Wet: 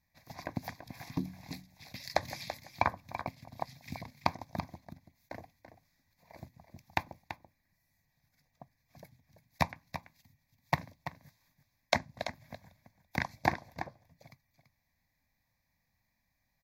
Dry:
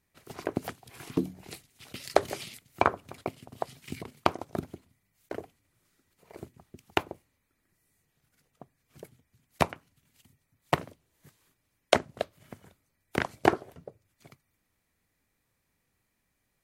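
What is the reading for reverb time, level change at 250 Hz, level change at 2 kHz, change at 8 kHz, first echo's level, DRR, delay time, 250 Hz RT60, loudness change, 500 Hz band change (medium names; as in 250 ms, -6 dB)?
no reverb, -6.5 dB, -2.5 dB, -5.5 dB, -11.0 dB, no reverb, 335 ms, no reverb, -6.0 dB, -9.5 dB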